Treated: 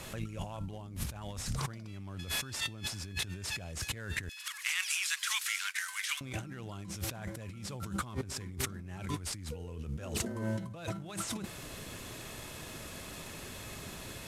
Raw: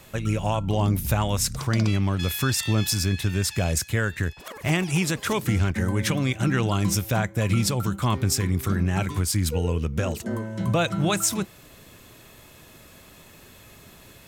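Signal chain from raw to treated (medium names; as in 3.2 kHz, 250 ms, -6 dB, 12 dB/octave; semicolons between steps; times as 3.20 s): CVSD coder 64 kbps; 4.29–6.21 s: Bessel high-pass 2.2 kHz, order 8; compressor with a negative ratio -35 dBFS, ratio -1; trim -4.5 dB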